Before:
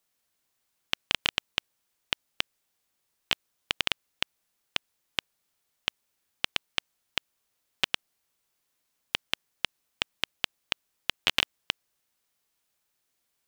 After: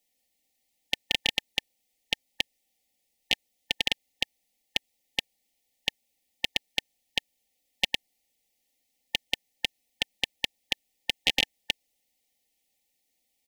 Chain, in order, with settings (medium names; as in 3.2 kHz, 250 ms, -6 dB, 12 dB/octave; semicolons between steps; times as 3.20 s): brick-wall FIR band-stop 880–1800 Hz; comb 3.9 ms